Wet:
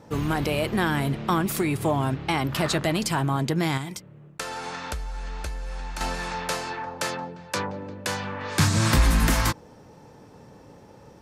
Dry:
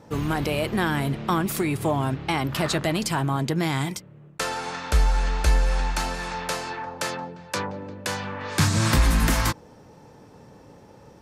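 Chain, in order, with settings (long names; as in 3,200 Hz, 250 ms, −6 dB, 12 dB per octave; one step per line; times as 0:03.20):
0:03.77–0:06.01: downward compressor 16 to 1, threshold −29 dBFS, peak gain reduction 15 dB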